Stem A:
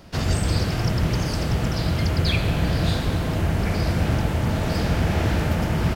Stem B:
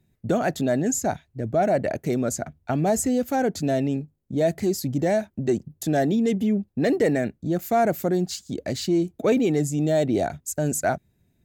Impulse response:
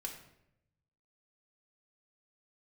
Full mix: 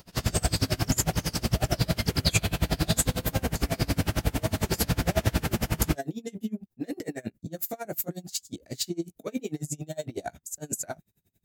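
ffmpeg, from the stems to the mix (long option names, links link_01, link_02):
-filter_complex "[0:a]volume=2.5dB[link_01];[1:a]alimiter=limit=-21.5dB:level=0:latency=1:release=17,volume=2dB[link_02];[link_01][link_02]amix=inputs=2:normalize=0,crystalizer=i=2.5:c=0,flanger=delay=17:depth=2.2:speed=0.58,aeval=exprs='val(0)*pow(10,-28*(0.5-0.5*cos(2*PI*11*n/s))/20)':channel_layout=same"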